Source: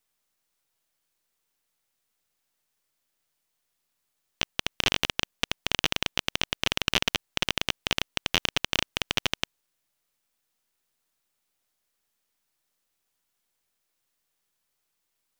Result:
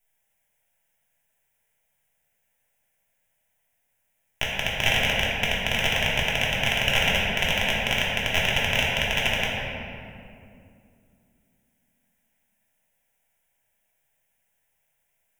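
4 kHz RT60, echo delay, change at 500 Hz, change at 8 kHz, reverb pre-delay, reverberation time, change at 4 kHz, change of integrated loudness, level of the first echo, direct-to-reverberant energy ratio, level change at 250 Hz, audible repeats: 1.4 s, no echo, +8.0 dB, +1.0 dB, 3 ms, 2.5 s, +2.5 dB, +5.0 dB, no echo, -6.0 dB, +4.0 dB, no echo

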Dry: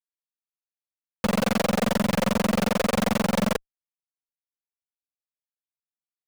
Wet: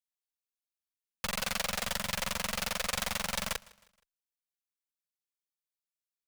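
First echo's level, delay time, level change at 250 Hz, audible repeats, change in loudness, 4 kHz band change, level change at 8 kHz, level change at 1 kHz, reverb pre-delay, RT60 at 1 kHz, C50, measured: -23.0 dB, 157 ms, -21.5 dB, 2, -8.5 dB, -2.0 dB, -0.5 dB, -10.0 dB, no reverb, no reverb, no reverb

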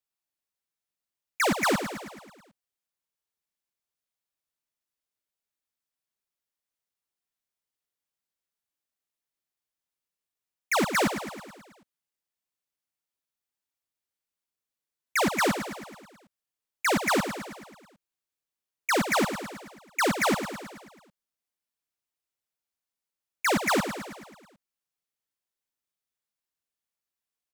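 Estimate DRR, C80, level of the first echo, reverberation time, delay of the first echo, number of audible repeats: no reverb, no reverb, -9.5 dB, no reverb, 108 ms, 6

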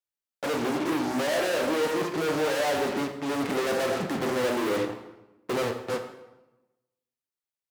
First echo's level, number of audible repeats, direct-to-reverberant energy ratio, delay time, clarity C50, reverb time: no echo, no echo, 5.0 dB, no echo, 8.0 dB, 1.0 s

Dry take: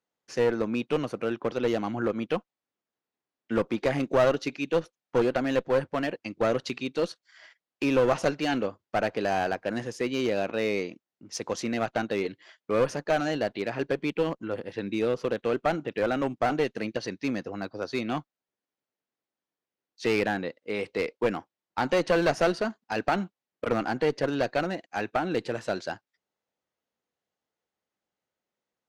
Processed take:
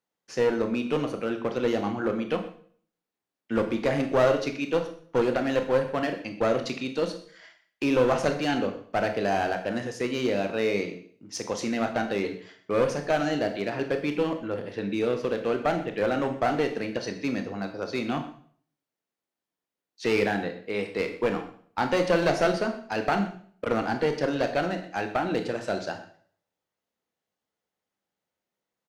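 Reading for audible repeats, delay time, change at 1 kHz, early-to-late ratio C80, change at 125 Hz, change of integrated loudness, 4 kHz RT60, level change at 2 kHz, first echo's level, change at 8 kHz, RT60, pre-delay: 1, 125 ms, +1.0 dB, 12.5 dB, +1.5 dB, +1.0 dB, 0.50 s, +1.0 dB, -18.0 dB, +1.0 dB, 0.50 s, 21 ms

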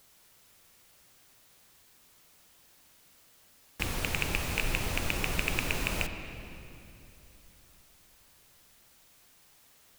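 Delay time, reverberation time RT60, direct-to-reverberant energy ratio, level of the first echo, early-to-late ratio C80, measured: no echo, 2.9 s, 6.0 dB, no echo, 8.0 dB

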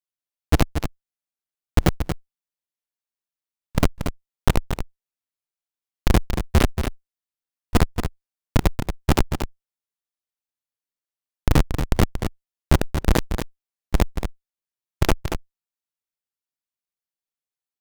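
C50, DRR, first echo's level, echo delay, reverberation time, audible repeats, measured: no reverb, no reverb, -8.0 dB, 231 ms, no reverb, 1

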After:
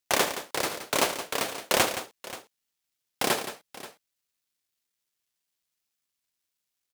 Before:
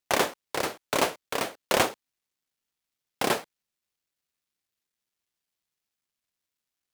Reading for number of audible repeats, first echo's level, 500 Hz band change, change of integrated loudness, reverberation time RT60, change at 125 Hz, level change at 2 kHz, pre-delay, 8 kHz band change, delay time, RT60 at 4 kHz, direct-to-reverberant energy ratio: 3, -14.5 dB, -1.0 dB, +0.5 dB, no reverb, -1.5 dB, +0.5 dB, no reverb, +4.0 dB, 73 ms, no reverb, no reverb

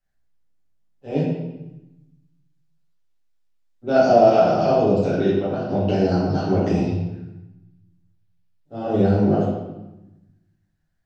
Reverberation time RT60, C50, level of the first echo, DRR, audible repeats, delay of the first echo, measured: 0.95 s, 0.5 dB, no echo, -9.5 dB, no echo, no echo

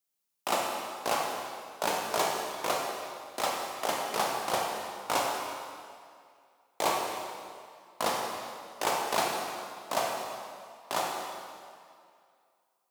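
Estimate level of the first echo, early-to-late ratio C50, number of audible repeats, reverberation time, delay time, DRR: no echo, 0.5 dB, no echo, 2.3 s, no echo, -1.0 dB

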